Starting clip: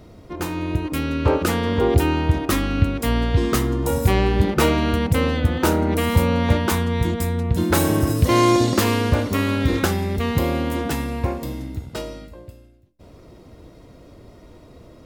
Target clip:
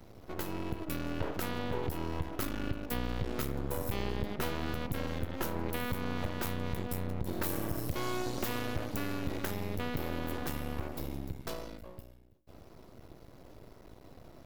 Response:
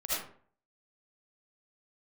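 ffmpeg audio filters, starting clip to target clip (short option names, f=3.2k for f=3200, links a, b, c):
-af "acompressor=threshold=-26dB:ratio=3,aeval=exprs='max(val(0),0)':c=same,aexciter=amount=3.2:drive=1.3:freq=11k,asetrate=45938,aresample=44100,volume=-4.5dB"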